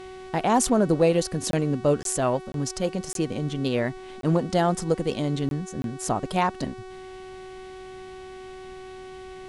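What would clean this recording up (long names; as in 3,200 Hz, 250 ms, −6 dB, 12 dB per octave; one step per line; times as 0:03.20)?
clipped peaks rebuilt −10 dBFS
hum removal 374.4 Hz, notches 27
repair the gap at 0:01.51/0:02.03/0:02.52/0:03.13/0:04.21/0:05.49/0:05.82, 22 ms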